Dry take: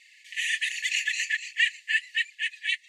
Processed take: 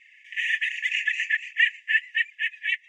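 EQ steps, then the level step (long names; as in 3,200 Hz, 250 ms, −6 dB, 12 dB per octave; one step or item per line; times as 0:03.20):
high-frequency loss of the air 240 metres
high-shelf EQ 4,900 Hz +9.5 dB
phaser with its sweep stopped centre 1,800 Hz, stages 4
+5.0 dB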